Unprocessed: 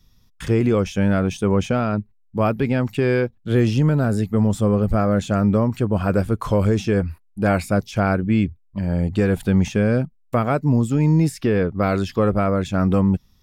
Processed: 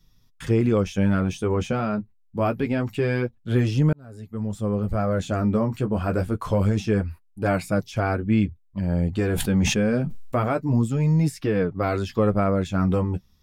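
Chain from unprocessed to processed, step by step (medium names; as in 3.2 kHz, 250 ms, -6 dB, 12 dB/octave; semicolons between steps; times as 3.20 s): flange 0.26 Hz, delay 6.1 ms, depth 8.4 ms, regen -27%; 3.93–5.27 s: fade in; 9.17–10.49 s: decay stretcher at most 44 dB/s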